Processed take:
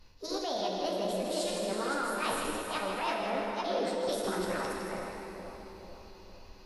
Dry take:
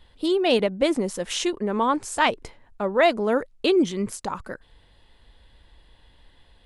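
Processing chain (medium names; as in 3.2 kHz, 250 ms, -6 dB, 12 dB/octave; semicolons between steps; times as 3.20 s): chunks repeated in reverse 278 ms, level -3 dB; flange 0.76 Hz, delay 9.4 ms, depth 1.8 ms, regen -37%; reverse; compression 5:1, threshold -34 dBFS, peak gain reduction 16 dB; reverse; plate-style reverb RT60 2.7 s, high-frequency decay 0.95×, pre-delay 0 ms, DRR 0 dB; formant shift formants +5 st; on a send: two-band feedback delay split 1.1 kHz, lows 450 ms, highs 159 ms, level -7.5 dB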